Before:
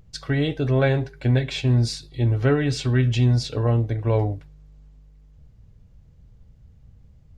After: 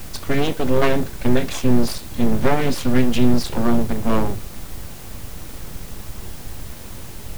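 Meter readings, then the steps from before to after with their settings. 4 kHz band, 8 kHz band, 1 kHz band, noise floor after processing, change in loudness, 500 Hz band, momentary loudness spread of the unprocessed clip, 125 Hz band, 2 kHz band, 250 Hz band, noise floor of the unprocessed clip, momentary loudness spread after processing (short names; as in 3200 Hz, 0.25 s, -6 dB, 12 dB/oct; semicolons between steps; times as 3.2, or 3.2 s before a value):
+1.5 dB, +7.0 dB, +8.0 dB, -34 dBFS, +1.0 dB, +3.0 dB, 5 LU, -6.0 dB, +2.5 dB, +6.5 dB, -52 dBFS, 17 LU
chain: low shelf 200 Hz +4.5 dB; added noise brown -34 dBFS; full-wave rectifier; in parallel at -6 dB: requantised 6-bit, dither triangular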